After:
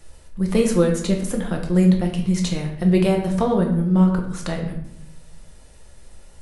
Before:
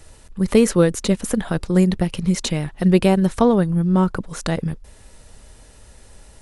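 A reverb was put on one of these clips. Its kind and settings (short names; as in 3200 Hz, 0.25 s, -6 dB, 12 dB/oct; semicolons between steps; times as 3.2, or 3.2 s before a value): shoebox room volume 160 m³, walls mixed, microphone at 0.84 m; gain -5.5 dB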